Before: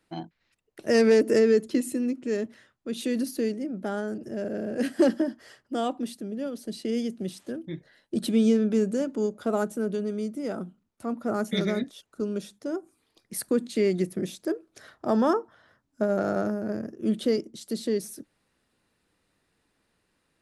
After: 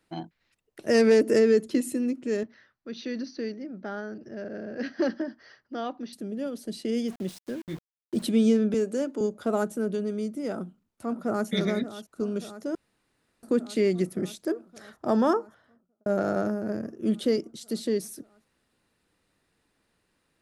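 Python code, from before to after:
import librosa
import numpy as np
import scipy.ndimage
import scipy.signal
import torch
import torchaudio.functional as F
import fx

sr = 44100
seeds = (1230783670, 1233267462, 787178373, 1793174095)

y = fx.cheby_ripple(x, sr, hz=6100.0, ripple_db=6, at=(2.43, 6.13))
y = fx.sample_gate(y, sr, floor_db=-42.5, at=(7.08, 8.23))
y = fx.highpass(y, sr, hz=250.0, slope=24, at=(8.74, 9.21))
y = fx.echo_throw(y, sr, start_s=10.52, length_s=0.96, ms=580, feedback_pct=80, wet_db=-13.5)
y = fx.studio_fade_out(y, sr, start_s=15.38, length_s=0.68)
y = fx.edit(y, sr, fx.room_tone_fill(start_s=12.75, length_s=0.68), tone=tone)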